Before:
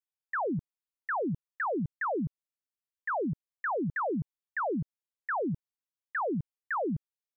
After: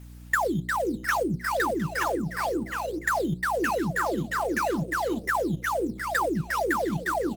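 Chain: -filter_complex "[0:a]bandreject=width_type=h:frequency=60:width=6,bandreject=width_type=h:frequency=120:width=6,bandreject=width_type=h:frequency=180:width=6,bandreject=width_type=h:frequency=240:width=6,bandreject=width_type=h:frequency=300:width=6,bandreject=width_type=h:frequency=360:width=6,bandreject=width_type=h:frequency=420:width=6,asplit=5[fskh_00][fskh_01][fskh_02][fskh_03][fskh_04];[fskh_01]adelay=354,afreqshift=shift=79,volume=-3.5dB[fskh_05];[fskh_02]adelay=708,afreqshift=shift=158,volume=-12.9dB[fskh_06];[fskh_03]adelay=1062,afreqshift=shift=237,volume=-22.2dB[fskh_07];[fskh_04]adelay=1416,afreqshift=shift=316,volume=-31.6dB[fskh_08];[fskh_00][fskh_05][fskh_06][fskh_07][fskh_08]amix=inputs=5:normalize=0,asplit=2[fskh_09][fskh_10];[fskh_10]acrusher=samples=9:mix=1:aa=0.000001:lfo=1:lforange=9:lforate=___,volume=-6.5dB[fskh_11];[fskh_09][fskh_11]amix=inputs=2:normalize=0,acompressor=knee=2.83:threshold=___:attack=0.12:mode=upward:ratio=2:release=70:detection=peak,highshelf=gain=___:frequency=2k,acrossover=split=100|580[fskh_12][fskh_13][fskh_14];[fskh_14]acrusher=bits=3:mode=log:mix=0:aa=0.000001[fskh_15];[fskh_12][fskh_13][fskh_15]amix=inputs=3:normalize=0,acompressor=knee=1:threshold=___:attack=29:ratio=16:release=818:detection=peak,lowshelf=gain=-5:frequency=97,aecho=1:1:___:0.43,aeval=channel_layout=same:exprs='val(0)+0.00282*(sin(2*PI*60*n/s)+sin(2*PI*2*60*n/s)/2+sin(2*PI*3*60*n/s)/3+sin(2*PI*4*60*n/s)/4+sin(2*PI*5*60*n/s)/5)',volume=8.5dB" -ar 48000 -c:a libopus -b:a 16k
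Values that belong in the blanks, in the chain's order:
2.2, -38dB, 3.5, -32dB, 5.9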